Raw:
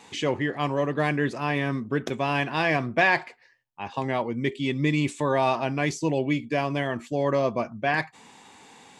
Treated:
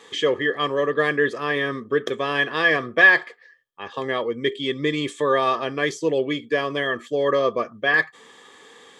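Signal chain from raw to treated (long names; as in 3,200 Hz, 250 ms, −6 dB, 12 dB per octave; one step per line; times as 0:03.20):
high-shelf EQ 2,300 Hz +8.5 dB
hollow resonant body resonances 460/1,200/1,700/3,200 Hz, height 18 dB, ringing for 20 ms
level −9 dB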